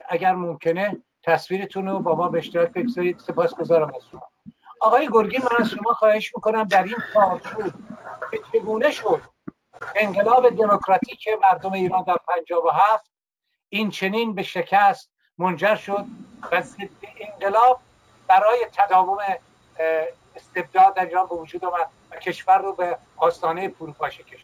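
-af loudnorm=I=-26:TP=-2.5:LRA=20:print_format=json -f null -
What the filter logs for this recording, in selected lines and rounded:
"input_i" : "-21.6",
"input_tp" : "-4.5",
"input_lra" : "4.0",
"input_thresh" : "-32.0",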